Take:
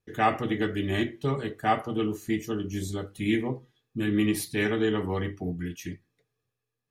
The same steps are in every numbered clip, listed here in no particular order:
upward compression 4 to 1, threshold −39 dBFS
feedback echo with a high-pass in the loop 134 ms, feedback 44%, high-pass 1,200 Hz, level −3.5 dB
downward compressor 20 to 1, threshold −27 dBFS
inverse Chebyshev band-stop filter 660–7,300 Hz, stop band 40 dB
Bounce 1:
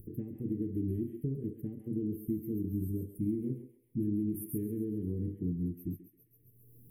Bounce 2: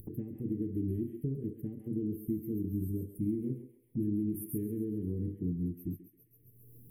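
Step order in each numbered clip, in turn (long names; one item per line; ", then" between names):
feedback echo with a high-pass in the loop, then downward compressor, then upward compression, then inverse Chebyshev band-stop filter
feedback echo with a high-pass in the loop, then downward compressor, then inverse Chebyshev band-stop filter, then upward compression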